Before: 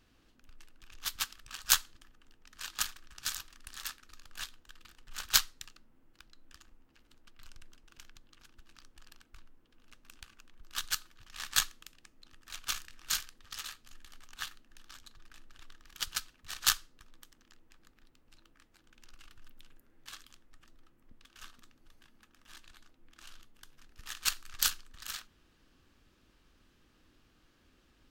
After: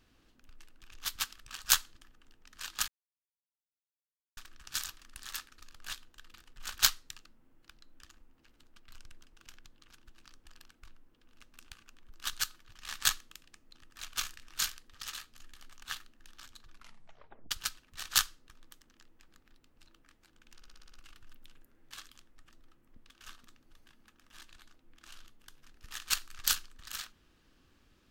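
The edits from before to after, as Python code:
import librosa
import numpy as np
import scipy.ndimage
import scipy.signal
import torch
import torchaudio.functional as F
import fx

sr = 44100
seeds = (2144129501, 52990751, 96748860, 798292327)

y = fx.edit(x, sr, fx.insert_silence(at_s=2.88, length_s=1.49),
    fx.tape_stop(start_s=15.21, length_s=0.81),
    fx.stutter(start_s=19.07, slice_s=0.06, count=7), tone=tone)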